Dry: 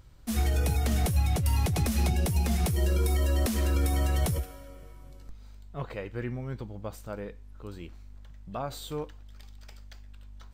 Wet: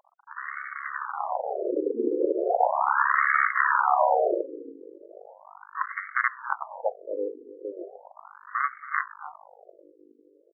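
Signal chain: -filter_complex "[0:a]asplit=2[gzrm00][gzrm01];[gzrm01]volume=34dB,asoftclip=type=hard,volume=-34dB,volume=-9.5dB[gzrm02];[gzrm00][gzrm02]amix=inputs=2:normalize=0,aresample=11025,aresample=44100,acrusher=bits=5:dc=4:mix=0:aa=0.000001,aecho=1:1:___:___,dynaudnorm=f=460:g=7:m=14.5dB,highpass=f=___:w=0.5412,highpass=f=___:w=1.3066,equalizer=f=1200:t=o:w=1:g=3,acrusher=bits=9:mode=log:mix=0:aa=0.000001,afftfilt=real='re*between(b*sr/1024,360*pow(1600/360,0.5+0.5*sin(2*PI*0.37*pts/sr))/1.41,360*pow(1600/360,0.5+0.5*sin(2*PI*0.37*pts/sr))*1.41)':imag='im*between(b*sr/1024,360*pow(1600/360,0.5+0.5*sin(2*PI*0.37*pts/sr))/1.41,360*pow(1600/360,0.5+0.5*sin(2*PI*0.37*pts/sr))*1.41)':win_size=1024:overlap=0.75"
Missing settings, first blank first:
278, 0.2, 260, 260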